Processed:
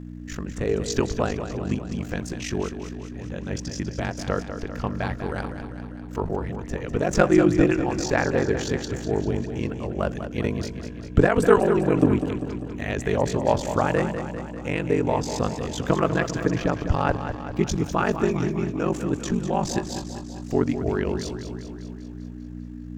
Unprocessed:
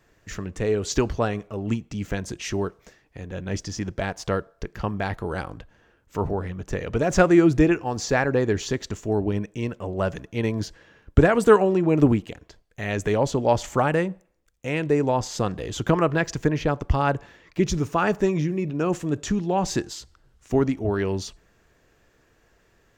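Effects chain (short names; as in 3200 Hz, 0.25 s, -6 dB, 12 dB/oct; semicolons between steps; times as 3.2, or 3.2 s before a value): ring modulator 24 Hz; buzz 60 Hz, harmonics 5, -39 dBFS -1 dB/oct; warbling echo 0.198 s, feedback 62%, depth 52 cents, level -9.5 dB; gain +1.5 dB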